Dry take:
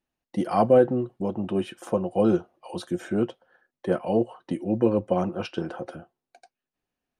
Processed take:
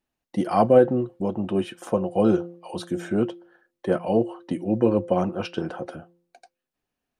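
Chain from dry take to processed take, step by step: de-hum 172.8 Hz, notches 3; trim +2 dB

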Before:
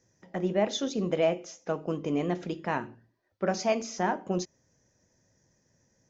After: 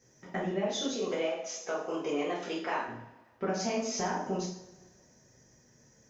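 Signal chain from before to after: 0.88–2.88 s: high-pass 480 Hz 12 dB/octave; compression 6:1, threshold -35 dBFS, peak gain reduction 13.5 dB; two-slope reverb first 0.52 s, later 1.7 s, from -19 dB, DRR -7 dB

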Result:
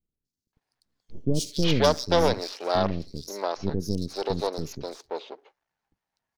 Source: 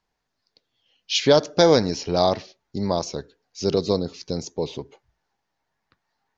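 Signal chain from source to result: partial rectifier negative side -12 dB; three bands offset in time lows, highs, mids 250/530 ms, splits 370/4600 Hz

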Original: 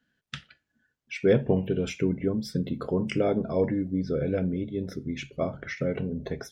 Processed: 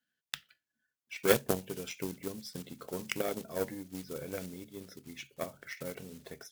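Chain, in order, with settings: block-companded coder 5-bit; tilt EQ +2.5 dB/octave; Chebyshev shaper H 3 -11 dB, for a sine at -11.5 dBFS; trim +4 dB

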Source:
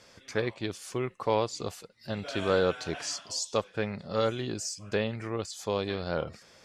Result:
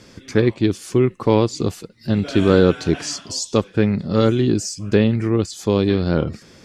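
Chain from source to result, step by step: resonant low shelf 440 Hz +9 dB, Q 1.5; trim +7.5 dB

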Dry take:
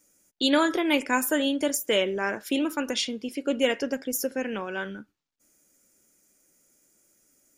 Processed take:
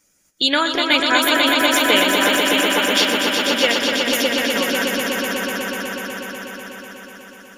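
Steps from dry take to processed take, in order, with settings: on a send: echo with a slow build-up 123 ms, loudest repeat 5, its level -5 dB; on the sum: harmonic-percussive split percussive +6 dB; FFT filter 160 Hz 0 dB, 390 Hz -6 dB, 990 Hz +1 dB, 4.4 kHz +3 dB, 8.1 kHz -5 dB; trim +2.5 dB

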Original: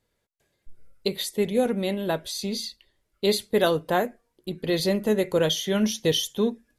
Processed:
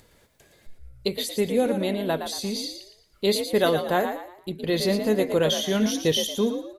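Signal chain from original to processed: upward compressor, threshold -43 dBFS; on a send: frequency-shifting echo 115 ms, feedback 34%, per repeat +58 Hz, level -8 dB

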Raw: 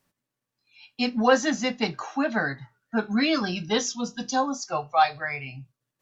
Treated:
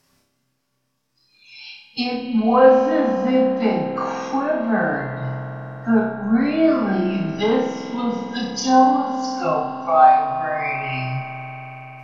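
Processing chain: low-pass that closes with the level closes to 1.2 kHz, closed at -23.5 dBFS; peaking EQ 5.2 kHz +7.5 dB 0.43 oct; in parallel at +2 dB: compression, threshold -34 dBFS, peak gain reduction 18 dB; on the sum: plain phase-vocoder stretch 2×; flutter echo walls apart 5.3 m, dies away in 0.57 s; reverberation RT60 5.1 s, pre-delay 46 ms, DRR 6.5 dB; trim +2 dB

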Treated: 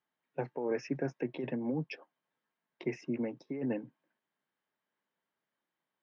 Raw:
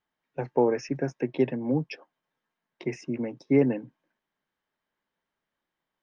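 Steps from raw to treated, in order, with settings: compressor with a negative ratio -26 dBFS, ratio -1; band-pass 130–4500 Hz; trim -6 dB

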